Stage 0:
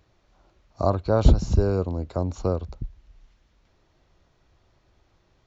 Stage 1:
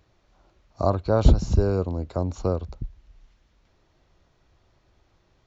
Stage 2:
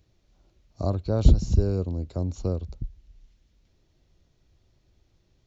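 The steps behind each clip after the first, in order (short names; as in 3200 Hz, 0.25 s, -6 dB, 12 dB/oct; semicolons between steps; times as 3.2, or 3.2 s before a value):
nothing audible
bell 1100 Hz -12.5 dB 2.2 oct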